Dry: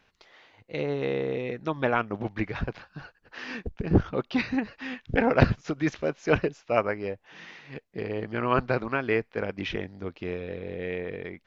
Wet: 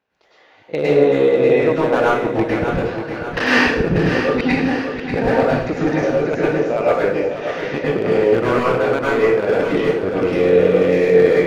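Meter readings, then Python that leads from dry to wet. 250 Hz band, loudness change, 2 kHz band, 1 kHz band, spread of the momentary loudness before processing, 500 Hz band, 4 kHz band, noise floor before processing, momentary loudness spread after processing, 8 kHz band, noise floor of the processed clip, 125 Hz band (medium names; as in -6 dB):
+11.0 dB, +12.0 dB, +11.0 dB, +10.0 dB, 14 LU, +15.0 dB, +11.5 dB, -68 dBFS, 9 LU, no reading, -51 dBFS, +6.5 dB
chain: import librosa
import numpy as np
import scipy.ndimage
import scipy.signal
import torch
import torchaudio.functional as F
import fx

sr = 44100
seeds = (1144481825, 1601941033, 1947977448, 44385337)

y = fx.recorder_agc(x, sr, target_db=-11.0, rise_db_per_s=16.0, max_gain_db=30)
y = scipy.signal.sosfilt(scipy.signal.butter(2, 61.0, 'highpass', fs=sr, output='sos'), y)
y = fx.peak_eq(y, sr, hz=520.0, db=9.5, octaves=2.6)
y = fx.level_steps(y, sr, step_db=19)
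y = np.clip(10.0 ** (11.5 / 20.0) * y, -1.0, 1.0) / 10.0 ** (11.5 / 20.0)
y = fx.echo_feedback(y, sr, ms=590, feedback_pct=52, wet_db=-8.5)
y = fx.rev_plate(y, sr, seeds[0], rt60_s=0.59, hf_ratio=1.0, predelay_ms=90, drr_db=-7.0)
y = F.gain(torch.from_numpy(y), -1.0).numpy()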